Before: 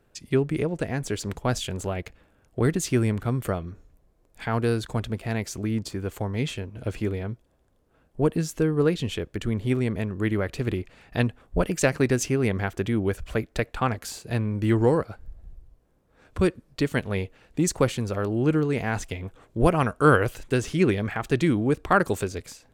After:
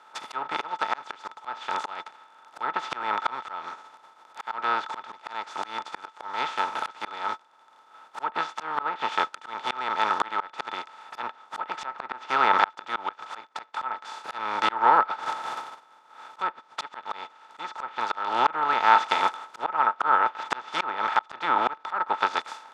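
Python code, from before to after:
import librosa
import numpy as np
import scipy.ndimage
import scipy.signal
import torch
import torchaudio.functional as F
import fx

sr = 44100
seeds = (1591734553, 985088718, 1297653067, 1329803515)

y = fx.spec_flatten(x, sr, power=0.31)
y = fx.peak_eq(y, sr, hz=1100.0, db=14.5, octaves=2.0)
y = fx.env_lowpass_down(y, sr, base_hz=1900.0, full_db=-10.0)
y = fx.bandpass_edges(y, sr, low_hz=260.0, high_hz=6100.0)
y = fx.small_body(y, sr, hz=(890.0, 1300.0, 3500.0), ring_ms=60, db=16)
y = fx.auto_swell(y, sr, attack_ms=723.0)
y = y * 10.0 ** (-1.0 / 20.0)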